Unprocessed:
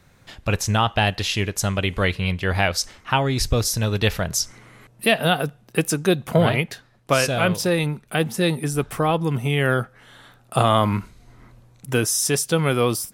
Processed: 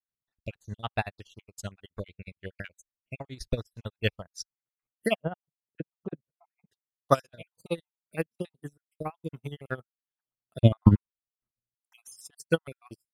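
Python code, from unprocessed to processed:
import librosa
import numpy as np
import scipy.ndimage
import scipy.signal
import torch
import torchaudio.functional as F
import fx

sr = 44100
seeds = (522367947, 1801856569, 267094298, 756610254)

y = fx.spec_dropout(x, sr, seeds[0], share_pct=46)
y = fx.lowpass(y, sr, hz=1000.0, slope=12, at=(5.22, 6.7))
y = fx.tilt_eq(y, sr, slope=-3.0, at=(10.59, 10.99))
y = fx.transient(y, sr, attack_db=4, sustain_db=-11)
y = y * (1.0 - 0.45 / 2.0 + 0.45 / 2.0 * np.cos(2.0 * np.pi * 15.0 * (np.arange(len(y)) / sr)))
y = fx.upward_expand(y, sr, threshold_db=-41.0, expansion=2.5)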